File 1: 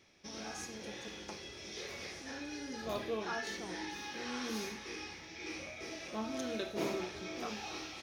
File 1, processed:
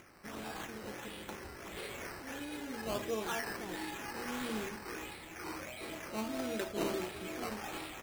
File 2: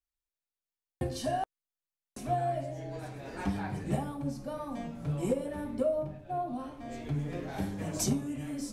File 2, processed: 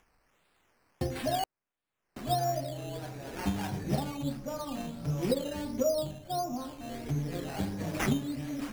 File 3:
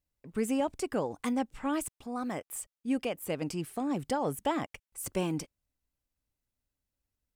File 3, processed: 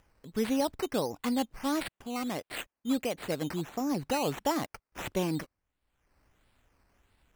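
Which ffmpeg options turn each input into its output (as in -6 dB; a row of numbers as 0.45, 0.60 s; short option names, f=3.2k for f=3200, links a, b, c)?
-af "acrusher=samples=10:mix=1:aa=0.000001:lfo=1:lforange=6:lforate=1.5,acompressor=mode=upward:threshold=-53dB:ratio=2.5,volume=1dB"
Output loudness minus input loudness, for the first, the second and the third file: +1.0, +1.0, +1.0 LU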